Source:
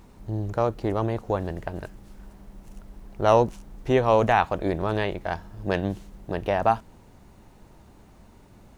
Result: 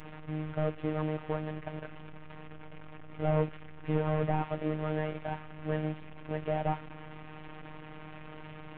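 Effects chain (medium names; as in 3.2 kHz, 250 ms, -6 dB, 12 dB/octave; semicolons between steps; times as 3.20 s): one-bit delta coder 16 kbps, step -33 dBFS; robot voice 154 Hz; trim -4 dB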